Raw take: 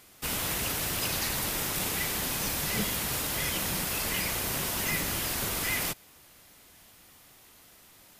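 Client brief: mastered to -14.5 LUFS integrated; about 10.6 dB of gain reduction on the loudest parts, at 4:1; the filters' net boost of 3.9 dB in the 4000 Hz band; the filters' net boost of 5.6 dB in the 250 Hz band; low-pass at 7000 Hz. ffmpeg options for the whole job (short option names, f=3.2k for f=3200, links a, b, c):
-af "lowpass=7k,equalizer=f=250:t=o:g=7.5,equalizer=f=4k:t=o:g=5.5,acompressor=threshold=-35dB:ratio=4,volume=21.5dB"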